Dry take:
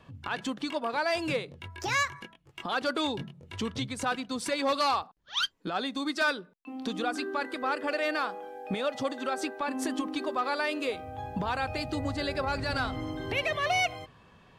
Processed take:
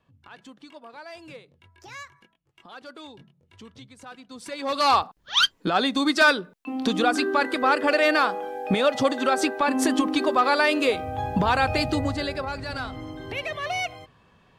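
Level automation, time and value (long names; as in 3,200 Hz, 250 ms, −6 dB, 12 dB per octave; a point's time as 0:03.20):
0:04.09 −13 dB
0:04.61 −3 dB
0:04.95 +9.5 dB
0:11.84 +9.5 dB
0:12.55 −1.5 dB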